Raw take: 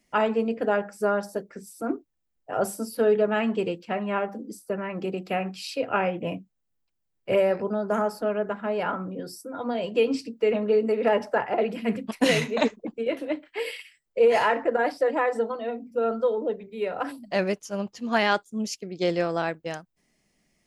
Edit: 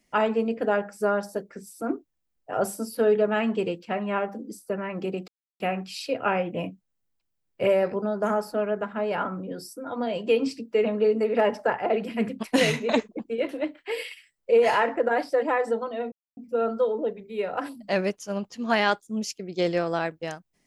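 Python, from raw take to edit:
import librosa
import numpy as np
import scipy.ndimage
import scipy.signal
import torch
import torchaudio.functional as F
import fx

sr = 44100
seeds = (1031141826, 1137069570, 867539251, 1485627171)

y = fx.edit(x, sr, fx.insert_silence(at_s=5.28, length_s=0.32),
    fx.insert_silence(at_s=15.8, length_s=0.25), tone=tone)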